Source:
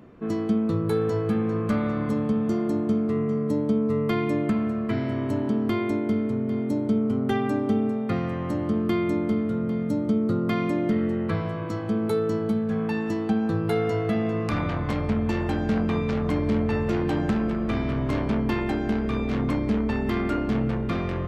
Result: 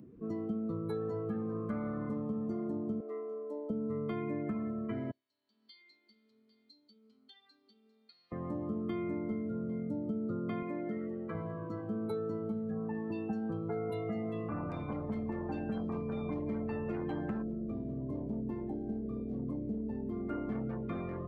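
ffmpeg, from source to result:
-filter_complex "[0:a]asettb=1/sr,asplit=3[a][b][c];[a]atrim=end=3.004[d];[b]atrim=start=3:end=3.7,asetpts=PTS-STARTPTS,afade=t=in:d=0.004:c=qsin,afade=t=out:st=0.696:d=0.004:c=qsin,highpass=f=390:w=0.5412,highpass=f=390:w=1.3066[e];[c]atrim=start=3.696[f];[d][e]acrossfade=d=0.004:c1=hsin:c2=qsin[g];[g][f]acrossfade=d=0.004:c1=qsin:c2=hsin,asettb=1/sr,asplit=3[h][i][j];[h]atrim=end=5.114[k];[i]atrim=start=5.11:end=8.32,asetpts=PTS-STARTPTS,afade=t=in:d=0.004:c=qsin,afade=t=out:st=3.206:d=0.004:c=qsin,bandpass=f=4.3k:t=q:w=7.2[l];[j]atrim=start=8.316[m];[k][l]acrossfade=d=0.004:c1=hsin:c2=qsin[n];[n][m]acrossfade=d=0.004:c1=qsin:c2=hsin,asettb=1/sr,asplit=3[o][p][q];[o]atrim=end=10.624[r];[p]atrim=start=10.62:end=11.35,asetpts=PTS-STARTPTS,afade=t=in:d=0.004:c=qsin,afade=t=out:st=0.726:d=0.004:c=qsin,highpass=f=330:p=1[s];[q]atrim=start=11.346[t];[r][s]acrossfade=d=0.004:c1=hsin:c2=qsin[u];[u][t]acrossfade=d=0.004:c1=qsin:c2=hsin,asettb=1/sr,asplit=3[v][w][x];[v]atrim=end=12.714[y];[w]atrim=start=12.71:end=16.46,asetpts=PTS-STARTPTS,afade=t=in:d=0.004:c=qsin,afade=t=out:st=3.746:d=0.004:c=qsin,acrossover=split=2000[z][aa];[aa]adelay=230[ab];[z][ab]amix=inputs=2:normalize=0,atrim=end_sample=165375[ac];[x]atrim=start=16.456[ad];[y][ac]acrossfade=d=0.004:c1=hsin:c2=qsin[ae];[ae][ad]acrossfade=d=0.004:c1=qsin:c2=hsin,asplit=3[af][ag][ah];[af]afade=t=out:st=17.41:d=0.02[ai];[ag]equalizer=f=2.2k:w=0.43:g=-13.5,afade=t=in:st=17.41:d=0.02,afade=t=out:st=20.28:d=0.02[aj];[ah]afade=t=in:st=20.28:d=0.02[ak];[ai][aj][ak]amix=inputs=3:normalize=0,acompressor=mode=upward:threshold=-34dB:ratio=2.5,afftdn=nr=19:nf=-35,acrossover=split=120|1300[al][am][an];[al]acompressor=threshold=-43dB:ratio=4[ao];[am]acompressor=threshold=-24dB:ratio=4[ap];[an]acompressor=threshold=-43dB:ratio=4[aq];[ao][ap][aq]amix=inputs=3:normalize=0,volume=-9dB"

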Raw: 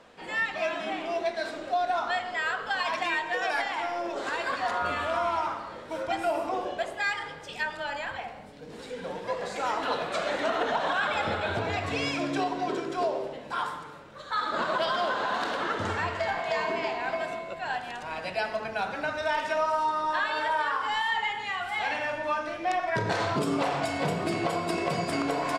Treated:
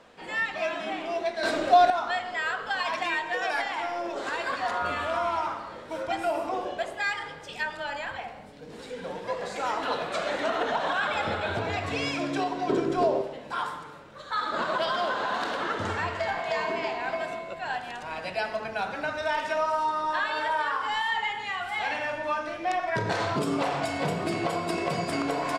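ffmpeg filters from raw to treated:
-filter_complex "[0:a]asettb=1/sr,asplit=3[a][b][c];[a]atrim=end=12.694[d];[b]atrim=start=12.69:end=13.22,asetpts=PTS-STARTPTS,afade=t=in:d=0.004:c=qsin,afade=t=out:st=0.526:d=0.004:c=qsin,lowshelf=f=490:g=10.5[e];[c]atrim=start=13.216[f];[d][e]acrossfade=d=0.004:c1=hsin:c2=qsin[g];[g][f]acrossfade=d=0.004:c1=qsin:c2=hsin,asplit=3[h][i][j];[h]atrim=end=1.432[k];[i]atrim=start=1.428:end=1.902,asetpts=PTS-STARTPTS,volume=9.5dB[l];[j]atrim=start=1.898[m];[k][l]acrossfade=d=0.004:c1=hsin:c2=hsin[n];[n][m]acrossfade=d=0.004:c1=hsin:c2=hsin"

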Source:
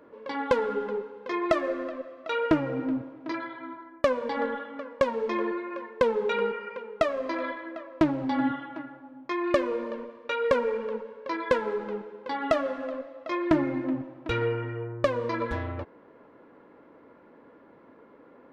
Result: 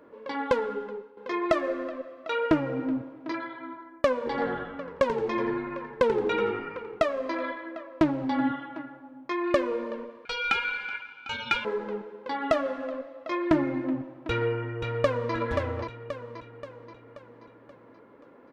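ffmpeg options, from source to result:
-filter_complex "[0:a]asplit=3[a][b][c];[a]afade=t=out:st=4.25:d=0.02[d];[b]asplit=5[e][f][g][h][i];[f]adelay=86,afreqshift=-100,volume=-9dB[j];[g]adelay=172,afreqshift=-200,volume=-18.4dB[k];[h]adelay=258,afreqshift=-300,volume=-27.7dB[l];[i]adelay=344,afreqshift=-400,volume=-37.1dB[m];[e][j][k][l][m]amix=inputs=5:normalize=0,afade=t=in:st=4.25:d=0.02,afade=t=out:st=6.98:d=0.02[n];[c]afade=t=in:st=6.98:d=0.02[o];[d][n][o]amix=inputs=3:normalize=0,asettb=1/sr,asplit=3[p][q][r];[p]atrim=end=10.254[s];[q]atrim=start=10.25:end=11.65,asetpts=PTS-STARTPTS,afade=t=in:d=0.004:c=qsin,afade=t=out:st=1.396:d=0.004:c=qsin,aeval=exprs='val(0)*sin(2*PI*1900*n/s)':c=same[t];[r]atrim=start=11.646[u];[s][t]acrossfade=d=0.004:c1=hsin:c2=qsin[v];[v][u]acrossfade=d=0.004:c1=qsin:c2=hsin,asplit=2[w][x];[x]afade=t=in:st=14.28:d=0.01,afade=t=out:st=15.34:d=0.01,aecho=0:1:530|1060|1590|2120|2650|3180:0.530884|0.265442|0.132721|0.0663606|0.0331803|0.0165901[y];[w][y]amix=inputs=2:normalize=0,asplit=2[z][aa];[z]atrim=end=1.17,asetpts=PTS-STARTPTS,afade=t=out:st=0.44:d=0.73:silence=0.266073[ab];[aa]atrim=start=1.17,asetpts=PTS-STARTPTS,afade=t=in:d=0.004:c=hsin:silence=0.266073[ac];[ab][ac]concat=n=2:v=0:a=1"

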